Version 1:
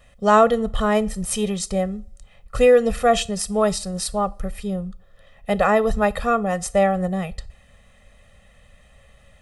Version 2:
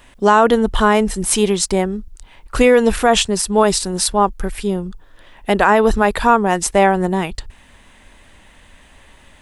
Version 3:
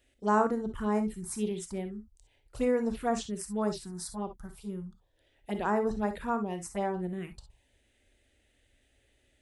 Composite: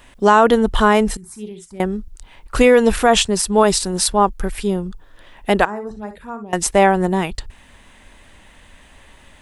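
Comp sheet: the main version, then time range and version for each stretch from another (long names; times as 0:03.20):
2
0:01.17–0:01.80: punch in from 3
0:05.65–0:06.53: punch in from 3
not used: 1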